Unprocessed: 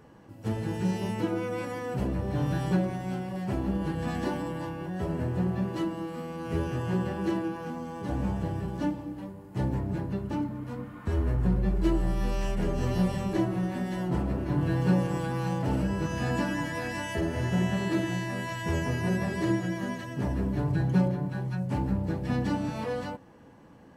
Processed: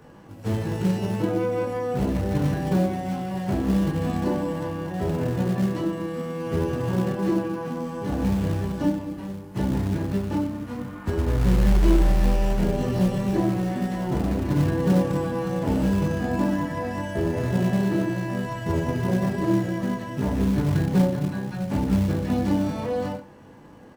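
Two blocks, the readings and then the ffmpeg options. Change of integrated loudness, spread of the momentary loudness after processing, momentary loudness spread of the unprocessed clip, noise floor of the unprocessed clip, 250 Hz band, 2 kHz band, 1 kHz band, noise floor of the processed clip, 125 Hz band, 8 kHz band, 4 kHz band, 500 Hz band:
+5.5 dB, 8 LU, 7 LU, -48 dBFS, +6.0 dB, +1.0 dB, +4.0 dB, -41 dBFS, +4.5 dB, +4.0 dB, +2.5 dB, +6.0 dB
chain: -filter_complex "[0:a]aecho=1:1:20|42|66.2|92.82|122.1:0.631|0.398|0.251|0.158|0.1,acrossover=split=240|1100[a][b][c];[a]acrusher=bits=4:mode=log:mix=0:aa=0.000001[d];[c]acompressor=threshold=-46dB:ratio=6[e];[d][b][e]amix=inputs=3:normalize=0,volume=3.5dB"

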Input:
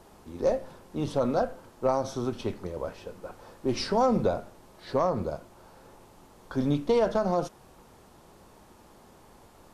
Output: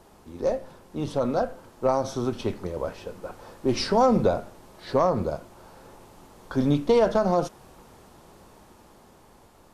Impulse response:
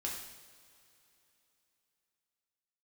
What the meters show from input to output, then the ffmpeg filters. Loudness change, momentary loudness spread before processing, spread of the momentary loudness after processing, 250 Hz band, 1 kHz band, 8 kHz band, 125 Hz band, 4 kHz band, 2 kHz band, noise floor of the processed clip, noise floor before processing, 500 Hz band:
+3.5 dB, 17 LU, 17 LU, +3.5 dB, +3.5 dB, +3.5 dB, +3.5 dB, +4.0 dB, +3.5 dB, -54 dBFS, -55 dBFS, +3.5 dB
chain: -af "dynaudnorm=f=700:g=5:m=4dB"

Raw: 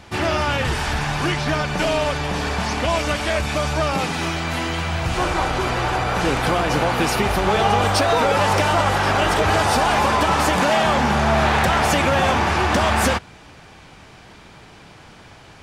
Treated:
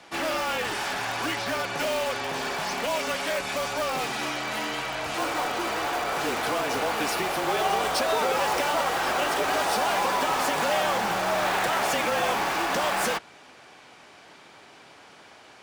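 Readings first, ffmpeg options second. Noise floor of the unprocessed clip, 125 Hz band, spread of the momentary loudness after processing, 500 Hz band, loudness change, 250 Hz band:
-45 dBFS, -20.0 dB, 5 LU, -6.5 dB, -7.0 dB, -11.0 dB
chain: -filter_complex "[0:a]highpass=340,afreqshift=-31,asplit=2[a][b];[b]aeval=exprs='(mod(8.41*val(0)+1,2)-1)/8.41':c=same,volume=-9dB[c];[a][c]amix=inputs=2:normalize=0,volume=-6.5dB"

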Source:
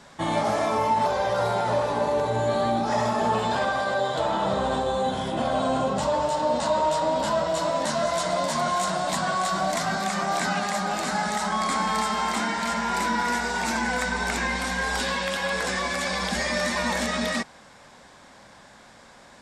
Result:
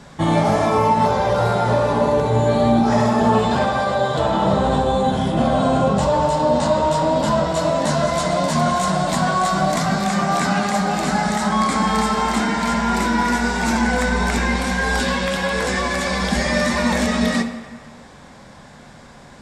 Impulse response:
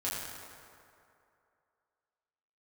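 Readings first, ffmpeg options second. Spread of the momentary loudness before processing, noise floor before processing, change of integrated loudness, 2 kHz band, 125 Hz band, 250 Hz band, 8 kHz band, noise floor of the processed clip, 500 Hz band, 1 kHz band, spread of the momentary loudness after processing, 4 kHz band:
2 LU, -50 dBFS, +6.5 dB, +4.5 dB, +12.5 dB, +11.0 dB, +3.5 dB, -43 dBFS, +6.0 dB, +5.5 dB, 3 LU, +3.5 dB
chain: -filter_complex "[0:a]lowshelf=f=350:g=10.5,asplit=2[a][b];[1:a]atrim=start_sample=2205,asetrate=70560,aresample=44100[c];[b][c]afir=irnorm=-1:irlink=0,volume=-6.5dB[d];[a][d]amix=inputs=2:normalize=0,volume=1.5dB"

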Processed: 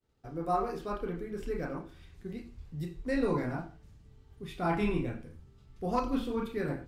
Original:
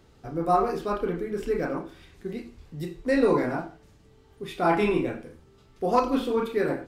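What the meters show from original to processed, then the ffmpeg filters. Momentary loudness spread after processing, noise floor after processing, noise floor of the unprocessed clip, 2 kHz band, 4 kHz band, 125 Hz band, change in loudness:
15 LU, -58 dBFS, -57 dBFS, -8.0 dB, -7.5 dB, -1.5 dB, -8.0 dB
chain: -af "asubboost=boost=4:cutoff=190,agate=range=-33dB:threshold=-47dB:ratio=3:detection=peak,volume=-7.5dB"

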